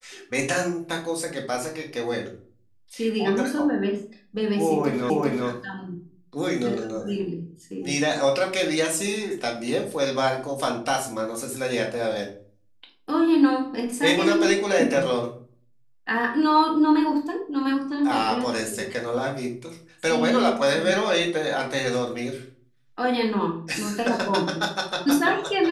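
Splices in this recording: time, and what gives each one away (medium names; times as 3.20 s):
5.10 s: repeat of the last 0.39 s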